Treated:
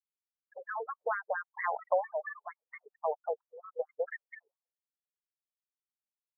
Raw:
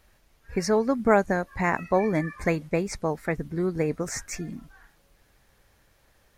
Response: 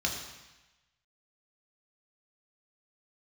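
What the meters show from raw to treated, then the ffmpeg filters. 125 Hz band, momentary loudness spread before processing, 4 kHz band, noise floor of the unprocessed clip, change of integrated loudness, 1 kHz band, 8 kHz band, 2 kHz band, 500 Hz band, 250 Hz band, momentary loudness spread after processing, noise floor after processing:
under -40 dB, 11 LU, under -40 dB, -64 dBFS, -10.0 dB, -6.5 dB, under -40 dB, -8.5 dB, -10.0 dB, under -40 dB, 19 LU, under -85 dBFS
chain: -af "afftfilt=real='re*gte(hypot(re,im),0.0355)':imag='im*gte(hypot(re,im),0.0355)':win_size=1024:overlap=0.75,acompressor=threshold=-26dB:ratio=4,afftfilt=real='re*between(b*sr/1024,600*pow(1600/600,0.5+0.5*sin(2*PI*4.4*pts/sr))/1.41,600*pow(1600/600,0.5+0.5*sin(2*PI*4.4*pts/sr))*1.41)':imag='im*between(b*sr/1024,600*pow(1600/600,0.5+0.5*sin(2*PI*4.4*pts/sr))/1.41,600*pow(1600/600,0.5+0.5*sin(2*PI*4.4*pts/sr))*1.41)':win_size=1024:overlap=0.75,volume=3.5dB"

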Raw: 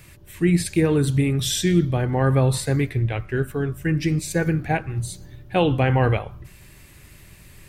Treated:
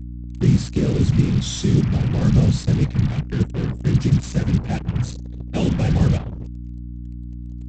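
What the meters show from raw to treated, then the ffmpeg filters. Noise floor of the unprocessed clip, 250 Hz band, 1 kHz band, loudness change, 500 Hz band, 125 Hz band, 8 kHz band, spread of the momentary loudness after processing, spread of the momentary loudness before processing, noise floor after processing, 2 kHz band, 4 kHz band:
-48 dBFS, +2.0 dB, -8.5 dB, +1.5 dB, -6.0 dB, +3.5 dB, -4.5 dB, 17 LU, 7 LU, -33 dBFS, -7.5 dB, -2.5 dB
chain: -af "afftfilt=real='hypot(re,im)*cos(2*PI*random(0))':imag='hypot(re,im)*sin(2*PI*random(1))':win_size=512:overlap=0.75,equalizer=f=125:t=o:w=1:g=10,equalizer=f=500:t=o:w=1:g=-5,equalizer=f=1k:t=o:w=1:g=-8,equalizer=f=2k:t=o:w=1:g=-9,aresample=16000,acrusher=bits=5:mix=0:aa=0.5,aresample=44100,aeval=exprs='val(0)+0.0178*(sin(2*PI*60*n/s)+sin(2*PI*2*60*n/s)/2+sin(2*PI*3*60*n/s)/3+sin(2*PI*4*60*n/s)/4+sin(2*PI*5*60*n/s)/5)':c=same,volume=4.5dB"

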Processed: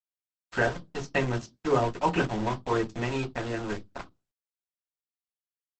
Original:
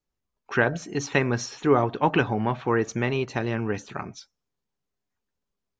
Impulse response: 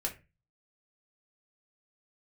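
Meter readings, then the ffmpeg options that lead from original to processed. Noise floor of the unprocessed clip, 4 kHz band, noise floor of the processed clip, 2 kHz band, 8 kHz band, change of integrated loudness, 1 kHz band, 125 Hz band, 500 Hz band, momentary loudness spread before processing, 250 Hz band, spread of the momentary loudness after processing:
-83 dBFS, -3.5 dB, under -85 dBFS, -4.5 dB, n/a, -4.0 dB, -3.0 dB, -4.5 dB, -4.0 dB, 9 LU, -5.0 dB, 11 LU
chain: -filter_complex "[0:a]aeval=exprs='val(0)*gte(abs(val(0)),0.0473)':c=same[a];[1:a]atrim=start_sample=2205,asetrate=88200,aresample=44100[b];[a][b]afir=irnorm=-1:irlink=0" -ar 48000 -c:a libopus -b:a 12k

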